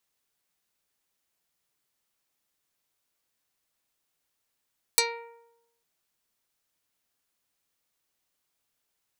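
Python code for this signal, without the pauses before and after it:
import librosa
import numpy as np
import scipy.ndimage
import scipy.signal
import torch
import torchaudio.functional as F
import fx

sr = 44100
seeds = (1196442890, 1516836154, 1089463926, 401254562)

y = fx.pluck(sr, length_s=0.85, note=70, decay_s=0.9, pick=0.28, brightness='dark')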